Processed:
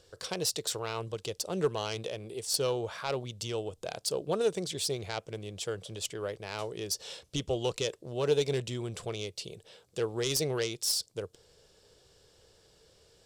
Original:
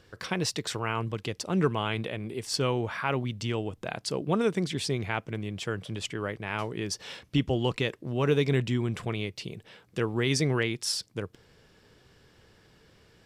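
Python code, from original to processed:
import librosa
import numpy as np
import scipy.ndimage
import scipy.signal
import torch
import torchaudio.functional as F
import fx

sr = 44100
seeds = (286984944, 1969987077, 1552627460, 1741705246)

y = fx.self_delay(x, sr, depth_ms=0.081)
y = fx.graphic_eq_10(y, sr, hz=(125, 250, 500, 1000, 2000, 4000, 8000), db=(-4, -10, 7, -3, -8, 4, 9))
y = y * librosa.db_to_amplitude(-3.0)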